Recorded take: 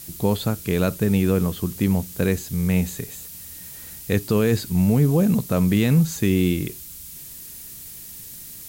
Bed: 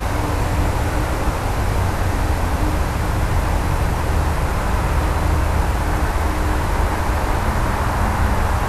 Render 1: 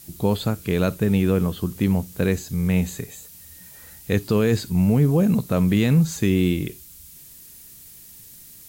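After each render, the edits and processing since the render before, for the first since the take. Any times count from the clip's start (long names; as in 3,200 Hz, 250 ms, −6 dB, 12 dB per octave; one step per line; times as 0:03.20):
noise reduction from a noise print 6 dB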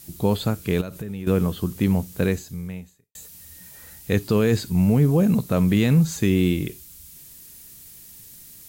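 0:00.81–0:01.27: downward compressor 8 to 1, threshold −28 dBFS
0:02.24–0:03.15: fade out quadratic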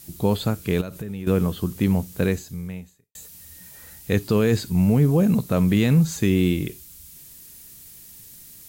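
no processing that can be heard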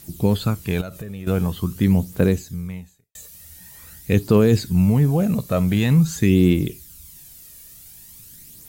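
phase shifter 0.46 Hz, delay 1.8 ms, feedback 44%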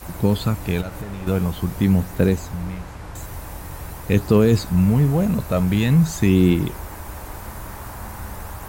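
mix in bed −15.5 dB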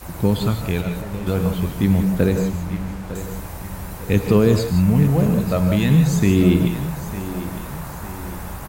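repeating echo 904 ms, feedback 43%, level −13.5 dB
reverb whose tail is shaped and stops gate 200 ms rising, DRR 6.5 dB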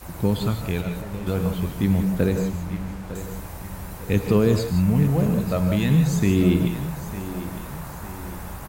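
level −3.5 dB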